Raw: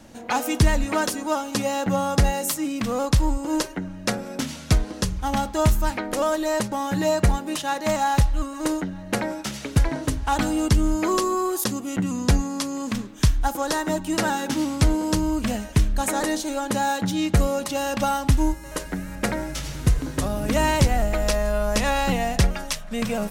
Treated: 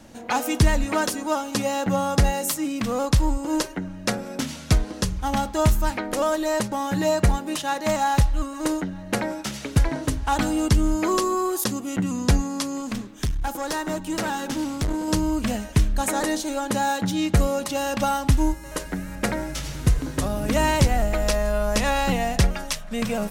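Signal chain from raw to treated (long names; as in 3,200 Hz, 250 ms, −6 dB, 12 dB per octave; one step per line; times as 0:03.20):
0:12.80–0:15.08: tube saturation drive 20 dB, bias 0.4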